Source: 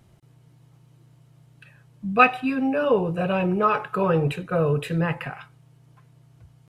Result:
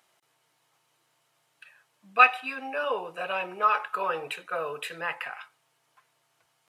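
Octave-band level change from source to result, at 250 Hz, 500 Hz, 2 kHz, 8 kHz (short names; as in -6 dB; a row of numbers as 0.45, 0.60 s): -22.0 dB, -10.0 dB, 0.0 dB, n/a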